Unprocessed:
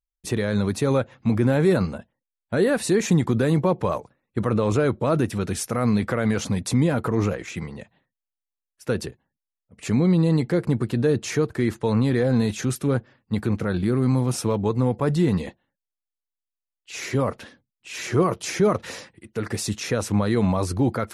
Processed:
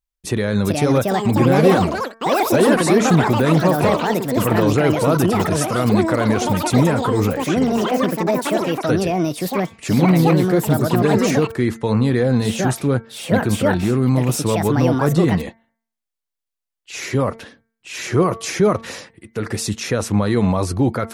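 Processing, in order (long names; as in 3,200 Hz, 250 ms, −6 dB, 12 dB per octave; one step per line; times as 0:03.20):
delay with pitch and tempo change per echo 475 ms, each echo +6 semitones, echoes 3
hum removal 226.2 Hz, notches 10
level +4 dB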